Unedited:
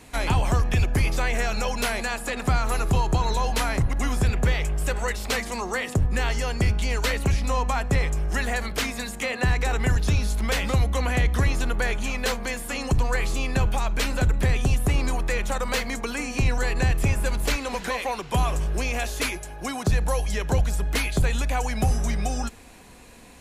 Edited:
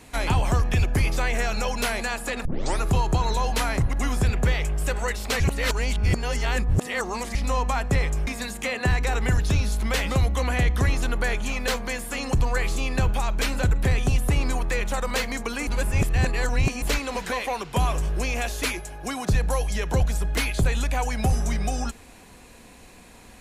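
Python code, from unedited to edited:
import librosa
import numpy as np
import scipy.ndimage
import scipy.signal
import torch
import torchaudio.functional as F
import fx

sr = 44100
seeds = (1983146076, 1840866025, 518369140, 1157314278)

y = fx.edit(x, sr, fx.tape_start(start_s=2.45, length_s=0.36),
    fx.reverse_span(start_s=5.4, length_s=1.95),
    fx.cut(start_s=8.27, length_s=0.58),
    fx.reverse_span(start_s=16.25, length_s=1.15), tone=tone)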